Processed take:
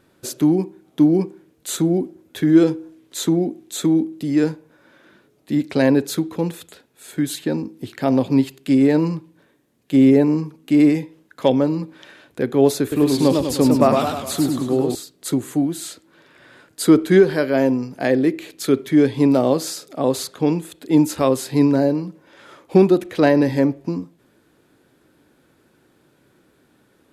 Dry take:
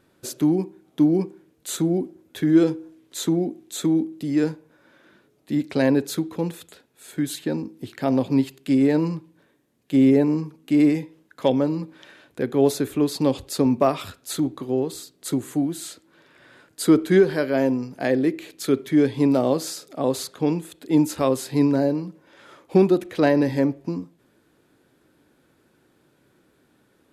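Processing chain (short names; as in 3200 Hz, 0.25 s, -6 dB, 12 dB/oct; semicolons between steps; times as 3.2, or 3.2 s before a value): 12.81–14.95 warbling echo 0.103 s, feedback 56%, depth 169 cents, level -4 dB; gain +3.5 dB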